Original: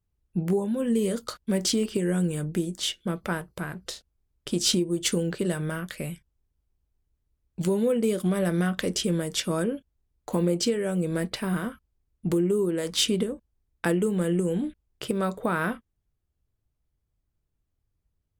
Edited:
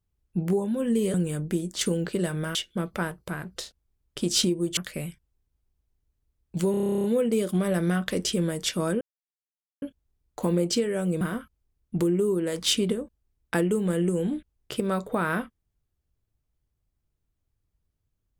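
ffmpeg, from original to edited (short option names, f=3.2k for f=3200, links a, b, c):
-filter_complex "[0:a]asplit=18[a][b][c][d][e][f][g][h][i][j][k][l][m][n][o][p][q][r];[a]atrim=end=1.142[s];[b]atrim=start=2.178:end=2.852[t];[c]atrim=start=5.068:end=5.812[u];[d]atrim=start=2.848:end=5.072[v];[e]atrim=start=5.808:end=7.782[w];[f]atrim=start=7.748:end=7.782[x];[g]atrim=start=7.748:end=7.782[y];[h]atrim=start=7.748:end=7.782[z];[i]atrim=start=7.748:end=7.782[aa];[j]atrim=start=7.748:end=7.782[ab];[k]atrim=start=7.748:end=7.782[ac];[l]atrim=start=7.748:end=7.782[ad];[m]atrim=start=7.748:end=7.782[ae];[n]atrim=start=7.748:end=7.782[af];[o]atrim=start=7.748:end=7.782[ag];[p]atrim=start=7.748:end=9.72,asetpts=PTS-STARTPTS,afade=t=out:st=1.968:d=0.004:c=hsin,apad=pad_dur=0.81[ah];[q]atrim=start=9.72:end=11.112,asetpts=PTS-STARTPTS,afade=t=in:d=0.004:c=hsin[ai];[r]atrim=start=11.518[aj];[s][t]acrossfade=d=0.004:c1=hsin:c2=hsin[ak];[ak][u]acrossfade=d=0.004:c1=hsin:c2=hsin[al];[al][v]acrossfade=d=0.004:c1=hsin:c2=hsin[am];[am][w]acrossfade=d=0.004:c1=hsin:c2=hsin[an];[an][x]acrossfade=d=0.004:c1=hsin:c2=hsin[ao];[ao][y]acrossfade=d=0.004:c1=hsin:c2=hsin[ap];[ap][z]acrossfade=d=0.004:c1=hsin:c2=hsin[aq];[aq][aa]acrossfade=d=0.004:c1=hsin:c2=hsin[ar];[ar][ab]acrossfade=d=0.004:c1=hsin:c2=hsin[as];[as][ac]acrossfade=d=0.004:c1=hsin:c2=hsin[at];[at][ad]acrossfade=d=0.004:c1=hsin:c2=hsin[au];[au][ae]acrossfade=d=0.004:c1=hsin:c2=hsin[av];[av][af]acrossfade=d=0.004:c1=hsin:c2=hsin[aw];[aw][ag]acrossfade=d=0.004:c1=hsin:c2=hsin[ax];[ah][ai]concat=n=2:v=0:a=1[ay];[ax][ay]acrossfade=d=0.004:c1=hsin:c2=hsin[az];[az][aj]acrossfade=d=0.004:c1=hsin:c2=hsin"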